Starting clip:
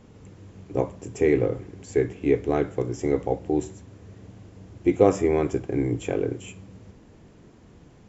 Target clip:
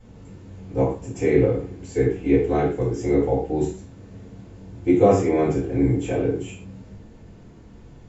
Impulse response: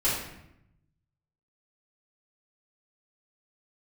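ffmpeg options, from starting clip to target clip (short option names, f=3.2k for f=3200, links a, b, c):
-filter_complex "[1:a]atrim=start_sample=2205,afade=t=out:st=0.26:d=0.01,atrim=end_sample=11907,asetrate=70560,aresample=44100[a];[0:a][a]afir=irnorm=-1:irlink=0,volume=-5dB"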